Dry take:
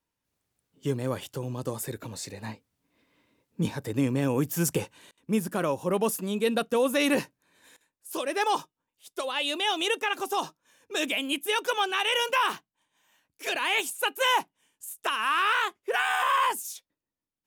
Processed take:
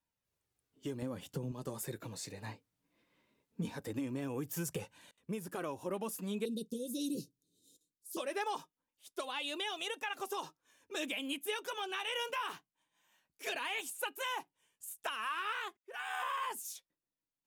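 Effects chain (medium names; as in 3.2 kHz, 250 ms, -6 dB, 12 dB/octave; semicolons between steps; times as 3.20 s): 1.02–1.52 s: peaking EQ 160 Hz +11.5 dB 2 oct; 6.45–8.17 s: inverse Chebyshev band-stop 780–2100 Hz, stop band 50 dB; 15.77–16.45 s: fade in linear; compression 6:1, threshold -28 dBFS, peak gain reduction 10 dB; flange 0.2 Hz, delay 1.1 ms, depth 5.9 ms, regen -42%; trim -2.5 dB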